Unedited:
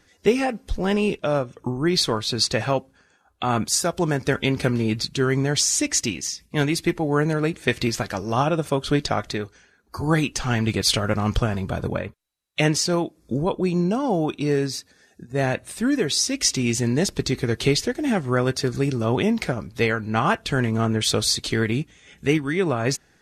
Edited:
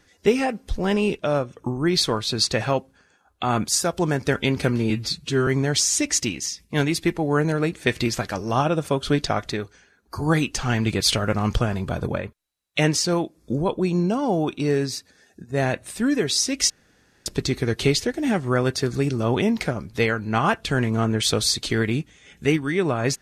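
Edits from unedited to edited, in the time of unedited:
4.90–5.28 s: stretch 1.5×
16.51–17.07 s: room tone

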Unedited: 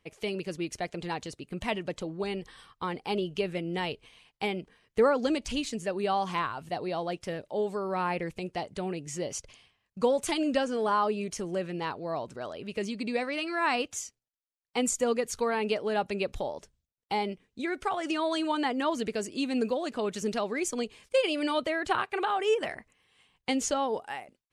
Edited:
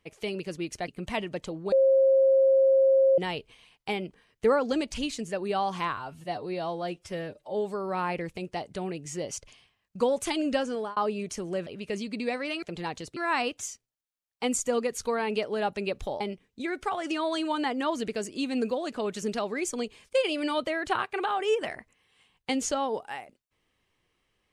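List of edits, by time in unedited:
0.88–1.42 s: move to 13.50 s
2.26–3.72 s: bleep 536 Hz -17 dBFS
6.51–7.56 s: stretch 1.5×
10.65–10.98 s: fade out equal-power
11.68–12.54 s: delete
16.54–17.20 s: delete

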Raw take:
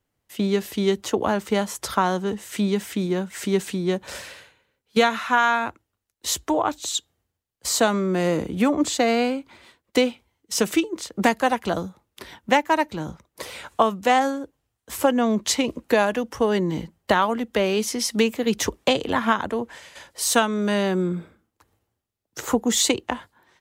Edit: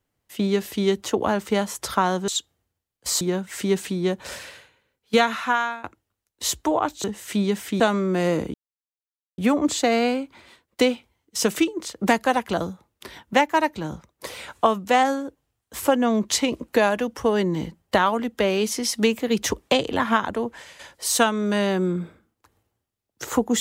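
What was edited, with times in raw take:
2.28–3.04 s: swap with 6.87–7.80 s
5.24–5.67 s: fade out linear, to -19.5 dB
8.54 s: insert silence 0.84 s

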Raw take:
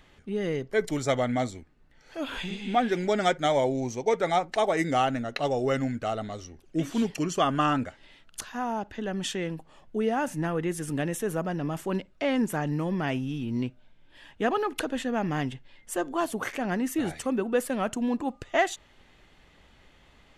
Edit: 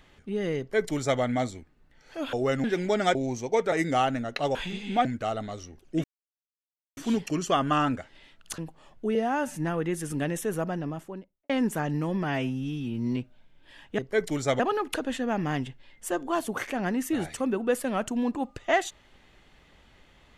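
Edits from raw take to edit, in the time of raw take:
0.59–1.20 s: copy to 14.45 s
2.33–2.83 s: swap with 5.55–5.86 s
3.34–3.69 s: delete
4.26–4.72 s: delete
6.85 s: insert silence 0.93 s
8.46–9.49 s: delete
10.06–10.33 s: stretch 1.5×
11.36–12.27 s: studio fade out
13.01–13.63 s: stretch 1.5×

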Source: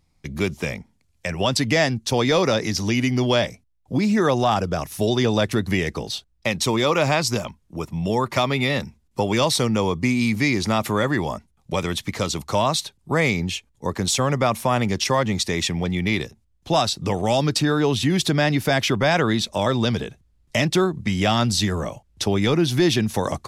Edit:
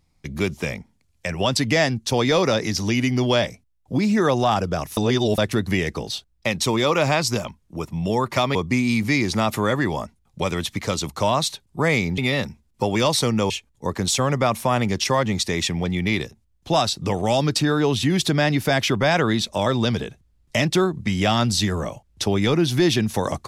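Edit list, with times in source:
4.97–5.38 s: reverse
8.55–9.87 s: move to 13.50 s

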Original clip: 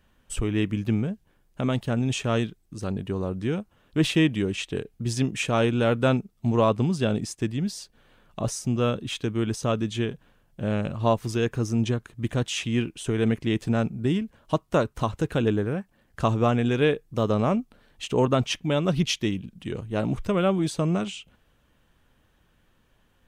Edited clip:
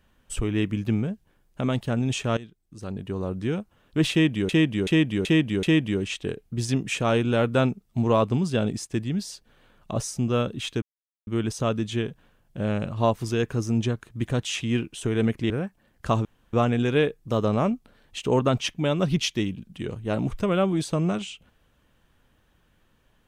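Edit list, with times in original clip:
2.37–3.32 s: fade in, from -17.5 dB
4.11–4.49 s: loop, 5 plays
9.30 s: insert silence 0.45 s
13.53–15.64 s: delete
16.39 s: insert room tone 0.28 s

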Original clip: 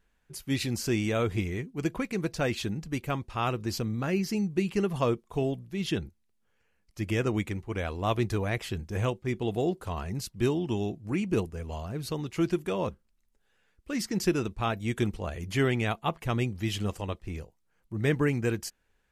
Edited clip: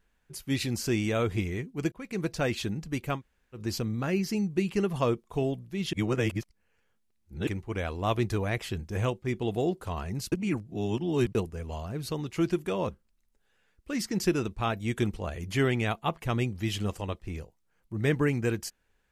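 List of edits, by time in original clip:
1.92–2.21 s: fade in
3.18–3.57 s: room tone, crossfade 0.10 s
5.93–7.47 s: reverse
10.32–11.35 s: reverse

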